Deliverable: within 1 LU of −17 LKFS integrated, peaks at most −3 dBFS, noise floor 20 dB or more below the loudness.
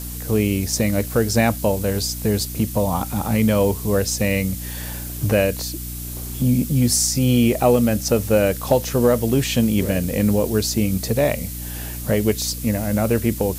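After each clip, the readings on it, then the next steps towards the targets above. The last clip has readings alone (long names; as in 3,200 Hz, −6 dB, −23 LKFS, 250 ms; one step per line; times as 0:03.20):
mains hum 60 Hz; hum harmonics up to 300 Hz; level of the hum −30 dBFS; background noise floor −30 dBFS; target noise floor −40 dBFS; integrated loudness −20.0 LKFS; sample peak −4.0 dBFS; target loudness −17.0 LKFS
→ mains-hum notches 60/120/180/240/300 Hz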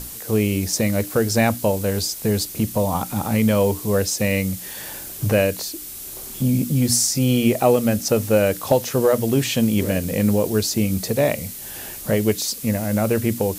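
mains hum none found; background noise floor −35 dBFS; target noise floor −41 dBFS
→ broadband denoise 6 dB, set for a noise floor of −35 dBFS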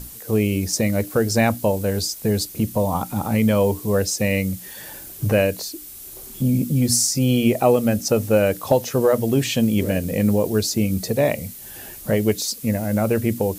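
background noise floor −38 dBFS; target noise floor −41 dBFS
→ broadband denoise 6 dB, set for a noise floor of −38 dBFS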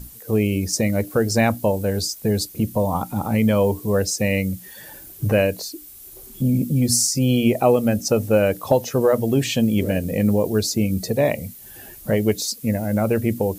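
background noise floor −42 dBFS; integrated loudness −20.5 LKFS; sample peak −4.0 dBFS; target loudness −17.0 LKFS
→ level +3.5 dB
brickwall limiter −3 dBFS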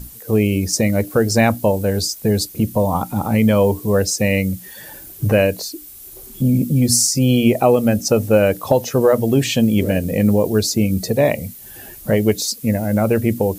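integrated loudness −17.0 LKFS; sample peak −3.0 dBFS; background noise floor −38 dBFS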